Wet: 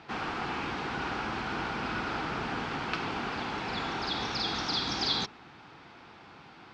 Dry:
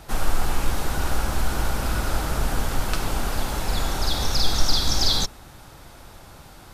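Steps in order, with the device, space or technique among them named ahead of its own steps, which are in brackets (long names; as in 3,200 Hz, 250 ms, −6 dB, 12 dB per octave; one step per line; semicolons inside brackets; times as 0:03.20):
kitchen radio (loudspeaker in its box 190–4,200 Hz, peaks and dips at 580 Hz −10 dB, 2,400 Hz +3 dB, 3,800 Hz −4 dB)
level −2 dB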